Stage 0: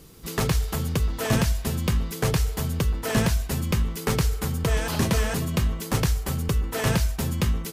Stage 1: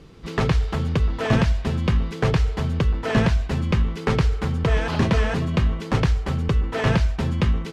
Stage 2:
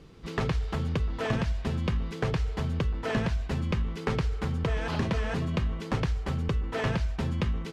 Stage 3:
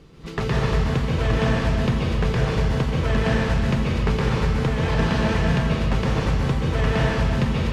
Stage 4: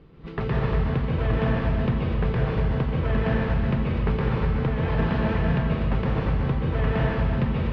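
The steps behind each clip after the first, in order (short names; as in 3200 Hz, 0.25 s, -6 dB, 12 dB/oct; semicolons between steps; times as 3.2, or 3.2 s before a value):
LPF 3300 Hz 12 dB/oct; gain +3.5 dB
compressor, threshold -19 dBFS, peak gain reduction 6 dB; gain -5 dB
plate-style reverb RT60 1.8 s, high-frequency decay 1×, pre-delay 0.12 s, DRR -5 dB; gain +2.5 dB
air absorption 350 m; gain -2 dB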